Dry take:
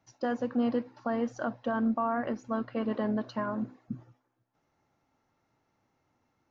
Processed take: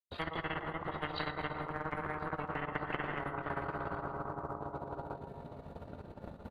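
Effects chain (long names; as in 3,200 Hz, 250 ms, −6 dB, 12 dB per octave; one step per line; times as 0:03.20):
dynamic equaliser 690 Hz, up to −6 dB, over −43 dBFS, Q 0.91
granular cloud 100 ms, grains 17 per second, spray 329 ms, pitch spread up and down by 0 semitones
high-shelf EQ 2,300 Hz −11.5 dB
pitch shifter −7 semitones
convolution reverb RT60 3.0 s, pre-delay 5 ms, DRR 3.5 dB
transient designer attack +10 dB, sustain −12 dB
downward compressor 5 to 1, threshold −31 dBFS, peak gain reduction 11.5 dB
gain on a spectral selection 0:03.33–0:05.16, 280–1,600 Hz +9 dB
tape delay 115 ms, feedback 72%, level −18 dB, low-pass 4,500 Hz
every bin compressed towards the loudest bin 10 to 1
level +3 dB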